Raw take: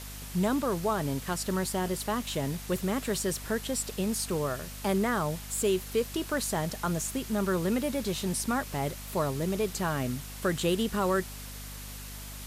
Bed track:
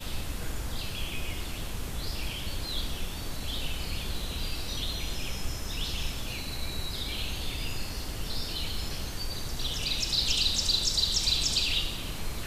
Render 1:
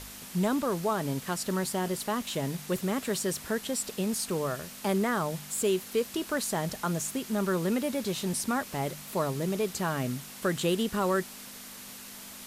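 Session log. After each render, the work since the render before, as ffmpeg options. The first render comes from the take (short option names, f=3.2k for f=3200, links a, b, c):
-af "bandreject=f=50:t=h:w=4,bandreject=f=100:t=h:w=4,bandreject=f=150:t=h:w=4"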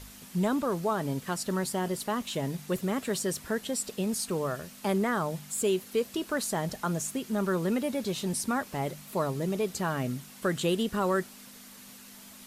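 -af "afftdn=nr=6:nf=-45"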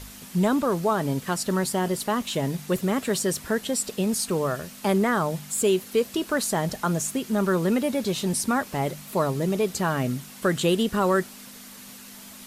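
-af "volume=5.5dB"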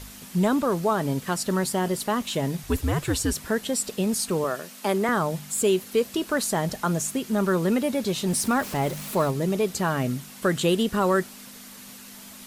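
-filter_complex "[0:a]asettb=1/sr,asplit=3[a][b][c];[a]atrim=end=2.634[d];[b]atrim=start=2.63:end=3.35,asetpts=PTS-STARTPTS,afade=t=in:d=0.004:c=qsin,afade=t=out:st=0.716:d=0.004:c=qsin,afreqshift=-110[e];[c]atrim=start=3.346[f];[d][e]acrossfade=d=0.004:c1=hsin:c2=qsin[g];[g][f]acrossfade=d=0.004:c1=qsin:c2=hsin,asettb=1/sr,asplit=3[h][i][j];[h]atrim=end=4.444[k];[i]atrim=start=4.44:end=5.09,asetpts=PTS-STARTPTS,afade=t=in:d=0.004:c=qsin,afade=t=out:st=0.646:d=0.004:c=qsin,highpass=250[l];[j]atrim=start=5.086[m];[k][l]acrossfade=d=0.004:c1=hsin:c2=qsin[n];[n][m]acrossfade=d=0.004:c1=qsin:c2=hsin,asettb=1/sr,asplit=3[o][p][q];[o]atrim=end=8.284[r];[p]atrim=start=8.28:end=9.31,asetpts=PTS-STARTPTS,afade=t=in:d=0.004:c=qsin,afade=t=out:st=1.026:d=0.004:c=qsin,aeval=exprs='val(0)+0.5*0.0188*sgn(val(0))':c=same[s];[q]atrim=start=9.306[t];[r][s]acrossfade=d=0.004:c1=hsin:c2=qsin[u];[u][t]acrossfade=d=0.004:c1=qsin:c2=hsin"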